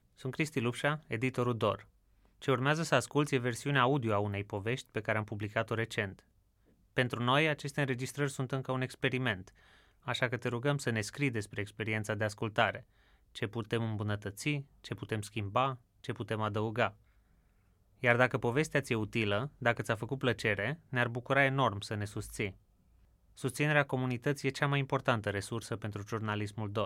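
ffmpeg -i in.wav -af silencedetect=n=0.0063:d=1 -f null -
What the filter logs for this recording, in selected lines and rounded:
silence_start: 16.90
silence_end: 18.03 | silence_duration: 1.13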